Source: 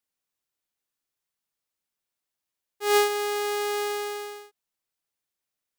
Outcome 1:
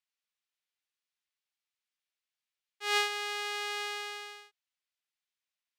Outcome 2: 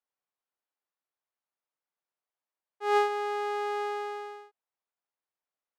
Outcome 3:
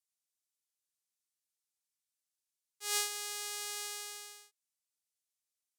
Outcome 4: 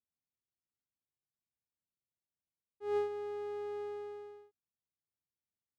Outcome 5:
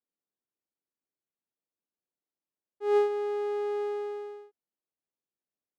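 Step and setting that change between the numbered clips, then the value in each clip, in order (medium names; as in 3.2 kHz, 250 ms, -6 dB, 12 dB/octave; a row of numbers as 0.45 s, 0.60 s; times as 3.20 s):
band-pass filter, frequency: 2.8 kHz, 840 Hz, 8 kHz, 110 Hz, 310 Hz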